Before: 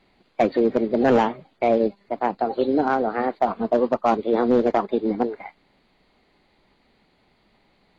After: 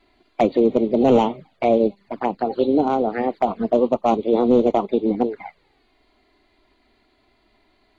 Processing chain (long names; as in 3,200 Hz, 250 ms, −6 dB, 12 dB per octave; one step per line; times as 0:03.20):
flanger swept by the level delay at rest 3 ms, full sweep at −18.5 dBFS
level +3.5 dB